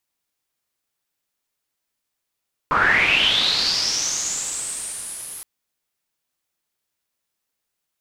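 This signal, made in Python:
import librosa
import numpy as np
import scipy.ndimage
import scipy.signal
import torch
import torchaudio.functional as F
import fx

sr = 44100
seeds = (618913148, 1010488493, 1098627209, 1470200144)

y = fx.riser_noise(sr, seeds[0], length_s=2.72, colour='white', kind='lowpass', start_hz=1100.0, end_hz=11000.0, q=8.1, swell_db=-27.0, law='linear')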